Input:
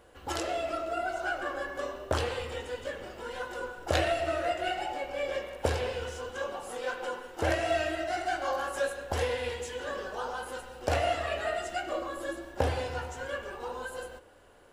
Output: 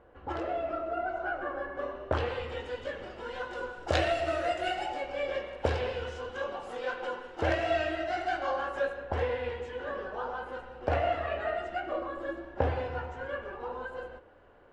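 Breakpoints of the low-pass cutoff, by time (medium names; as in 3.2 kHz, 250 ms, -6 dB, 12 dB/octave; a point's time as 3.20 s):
1.66 s 1.6 kHz
2.74 s 4.2 kHz
3.38 s 4.2 kHz
4.69 s 9.3 kHz
5.32 s 3.9 kHz
8.34 s 3.9 kHz
9.02 s 2.1 kHz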